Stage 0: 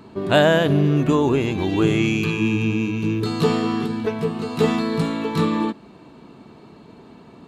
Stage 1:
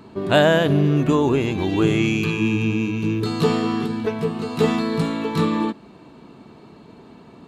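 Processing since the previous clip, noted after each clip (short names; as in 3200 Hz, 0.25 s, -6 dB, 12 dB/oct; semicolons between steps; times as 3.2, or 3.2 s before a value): nothing audible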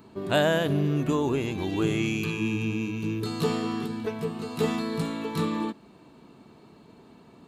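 high shelf 8600 Hz +11 dB; gain -7.5 dB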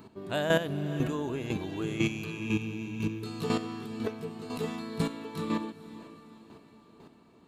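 chopper 2 Hz, depth 65%, duty 15%; diffused feedback echo 0.466 s, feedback 49%, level -15 dB; gain +1 dB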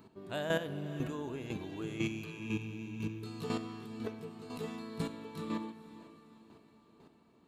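reverb RT60 1.2 s, pre-delay 45 ms, DRR 14.5 dB; gain -7 dB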